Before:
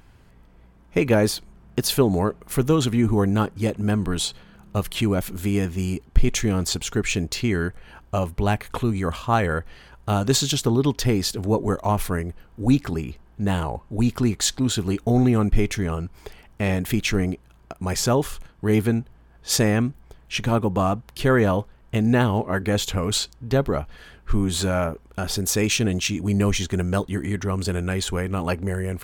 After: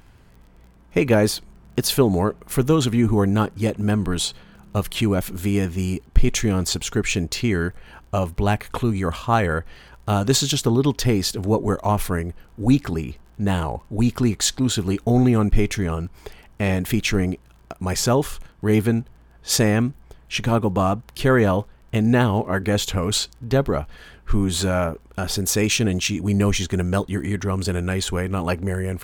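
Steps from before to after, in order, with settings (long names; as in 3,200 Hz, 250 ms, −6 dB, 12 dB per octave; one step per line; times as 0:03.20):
surface crackle 28 per second −43 dBFS
level +1.5 dB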